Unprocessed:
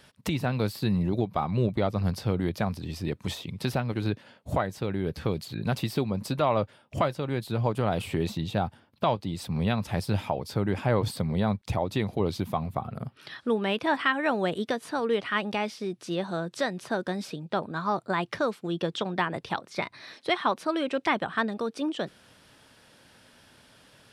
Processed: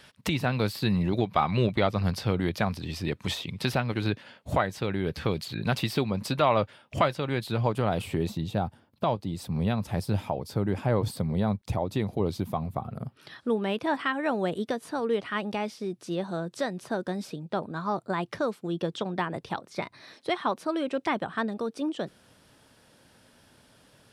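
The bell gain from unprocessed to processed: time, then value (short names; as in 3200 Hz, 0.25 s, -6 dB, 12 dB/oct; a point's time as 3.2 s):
bell 2500 Hz 2.6 oct
0.73 s +4.5 dB
1.6 s +12 dB
2.01 s +5.5 dB
7.45 s +5.5 dB
8.32 s -5 dB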